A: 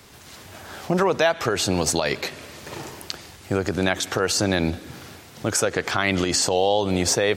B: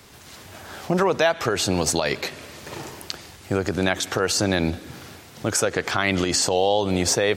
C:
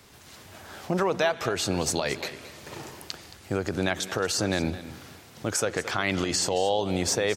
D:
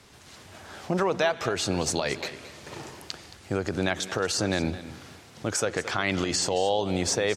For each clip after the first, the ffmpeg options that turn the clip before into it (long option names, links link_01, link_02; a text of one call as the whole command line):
ffmpeg -i in.wav -af anull out.wav
ffmpeg -i in.wav -af "aecho=1:1:222:0.178,volume=-5dB" out.wav
ffmpeg -i in.wav -af "lowpass=10000" out.wav